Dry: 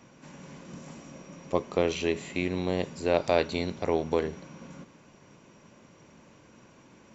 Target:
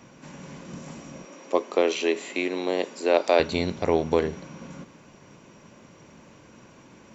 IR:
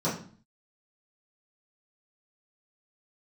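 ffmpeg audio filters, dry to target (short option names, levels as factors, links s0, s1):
-filter_complex "[0:a]asettb=1/sr,asplit=3[s0][s1][s2];[s0]atrim=end=1.254[s3];[s1]atrim=start=1.25:end=3.4,asetpts=PTS-STARTPTS,afade=t=in:d=0.004:c=qsin,afade=t=out:st=2.146:d=0.004:c=qsin,highpass=f=280:w=0.5412,highpass=f=280:w=1.3066[s4];[s2]atrim=start=3.396[s5];[s3][s4]acrossfade=d=0.004:c1=hsin:c2=qsin[s6];[s6][s5]acrossfade=d=0.004:c1=qsin:c2=hsin,volume=1.68"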